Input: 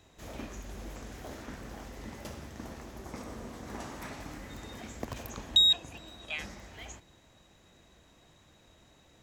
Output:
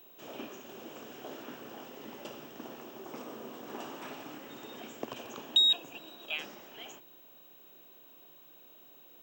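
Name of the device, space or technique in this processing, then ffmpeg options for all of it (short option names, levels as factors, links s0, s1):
old television with a line whistle: -af "highpass=f=170:w=0.5412,highpass=f=170:w=1.3066,equalizer=f=190:t=q:w=4:g=-10,equalizer=f=390:t=q:w=4:g=4,equalizer=f=2000:t=q:w=4:g=-8,equalizer=f=2900:t=q:w=4:g=8,equalizer=f=4400:t=q:w=4:g=-7,equalizer=f=6300:t=q:w=4:g=-5,lowpass=f=7600:w=0.5412,lowpass=f=7600:w=1.3066,aeval=exprs='val(0)+0.002*sin(2*PI*15734*n/s)':c=same"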